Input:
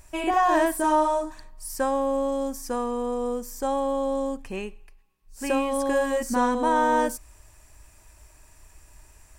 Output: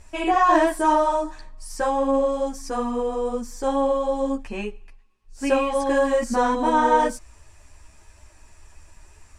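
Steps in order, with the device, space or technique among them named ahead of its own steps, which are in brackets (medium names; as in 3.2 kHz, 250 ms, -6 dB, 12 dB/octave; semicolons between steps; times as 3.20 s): string-machine ensemble chorus (three-phase chorus; low-pass 7.3 kHz 12 dB/octave); trim +6 dB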